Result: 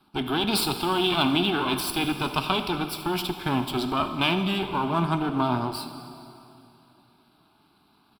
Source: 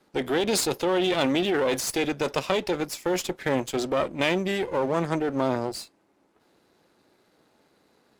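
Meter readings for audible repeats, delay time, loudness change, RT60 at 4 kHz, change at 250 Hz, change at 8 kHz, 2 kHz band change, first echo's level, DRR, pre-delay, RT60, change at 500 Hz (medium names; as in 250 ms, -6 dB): 1, 78 ms, +0.5 dB, 2.6 s, +1.5 dB, -4.5 dB, +0.5 dB, -16.5 dB, 7.5 dB, 5 ms, 2.8 s, -5.5 dB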